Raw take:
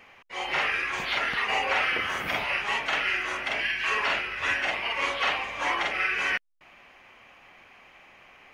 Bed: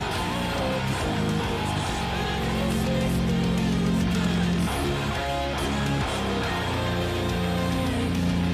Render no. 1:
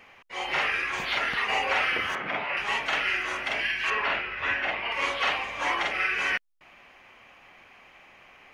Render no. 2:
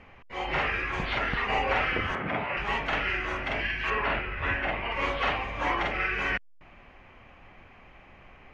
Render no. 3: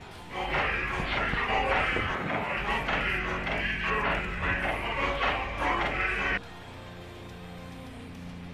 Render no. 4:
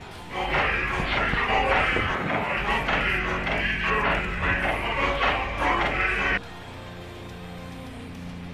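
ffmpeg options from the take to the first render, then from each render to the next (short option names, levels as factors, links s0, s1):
-filter_complex "[0:a]asettb=1/sr,asplit=3[s0][s1][s2];[s0]atrim=end=2.154[s3];[s1]atrim=start=2.15:end=2.57,asetpts=PTS-STARTPTS,afade=t=in:d=0.004:c=qsin,afade=t=out:st=0.416:d=0.004:c=qsin,highpass=150,lowpass=2400[s4];[s2]atrim=start=2.566[s5];[s3][s4]acrossfade=d=0.004:c1=hsin:c2=qsin[s6];[s6][s5]acrossfade=d=0.004:c1=qsin:c2=hsin,asettb=1/sr,asplit=3[s7][s8][s9];[s7]atrim=end=3.904[s10];[s8]atrim=start=3.9:end=4.92,asetpts=PTS-STARTPTS,afade=t=in:d=0.004:c=qsin,afade=t=out:st=1.016:d=0.004:c=qsin,lowpass=3100[s11];[s9]atrim=start=4.916[s12];[s10][s11]acrossfade=d=0.004:c1=hsin:c2=qsin[s13];[s13][s12]acrossfade=d=0.004:c1=qsin:c2=hsin"
-af "aemphasis=mode=reproduction:type=riaa"
-filter_complex "[1:a]volume=0.126[s0];[0:a][s0]amix=inputs=2:normalize=0"
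-af "volume=1.68"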